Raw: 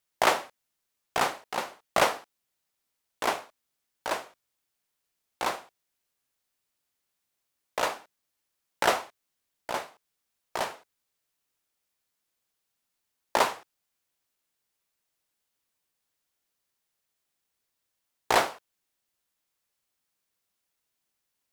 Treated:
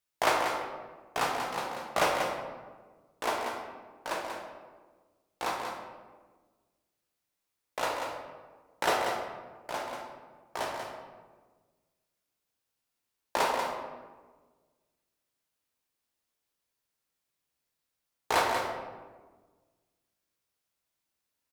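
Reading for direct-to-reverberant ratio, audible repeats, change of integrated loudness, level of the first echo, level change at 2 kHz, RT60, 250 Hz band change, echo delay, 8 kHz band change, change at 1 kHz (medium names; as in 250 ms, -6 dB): -1.5 dB, 1, -3.5 dB, -7.0 dB, -2.0 dB, 1.4 s, -0.5 dB, 188 ms, -3.5 dB, -1.0 dB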